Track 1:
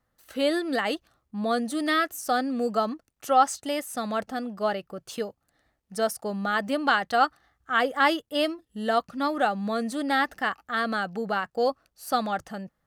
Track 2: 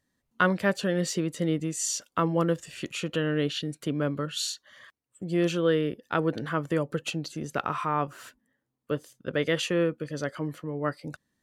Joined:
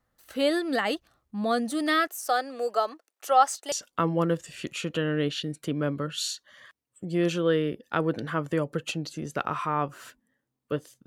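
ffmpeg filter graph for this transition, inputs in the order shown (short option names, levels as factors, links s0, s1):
-filter_complex "[0:a]asettb=1/sr,asplit=3[s0][s1][s2];[s0]atrim=end=2.074[s3];[s1]atrim=start=2.07:end=3.72,asetpts=PTS-STARTPTS,afade=t=in:d=0.004:c=qsin,afade=t=out:st=1.646:d=0.004:c=qsin,highpass=f=390:w=0.5412,highpass=f=390:w=1.3066[s4];[s2]atrim=start=3.716[s5];[s3][s4]acrossfade=d=0.004:c1=hsin:c2=qsin[s6];[s6][s5]acrossfade=d=0.004:c1=qsin:c2=hsin,apad=whole_dur=11.06,atrim=end=11.06,atrim=end=3.722[s7];[1:a]atrim=start=1.908:end=9.25[s8];[s7][s8]acrossfade=d=0.004:c1=hsin:c2=hsin"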